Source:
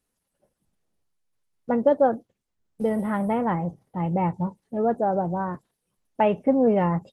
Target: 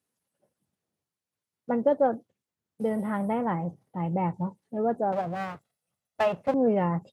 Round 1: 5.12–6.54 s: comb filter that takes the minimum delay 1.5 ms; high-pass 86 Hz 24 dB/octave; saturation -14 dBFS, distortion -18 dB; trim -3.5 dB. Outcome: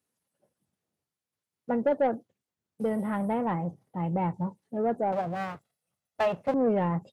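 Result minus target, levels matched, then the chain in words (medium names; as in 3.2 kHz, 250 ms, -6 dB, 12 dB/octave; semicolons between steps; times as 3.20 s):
saturation: distortion +19 dB
5.12–6.54 s: comb filter that takes the minimum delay 1.5 ms; high-pass 86 Hz 24 dB/octave; saturation -2.5 dBFS, distortion -37 dB; trim -3.5 dB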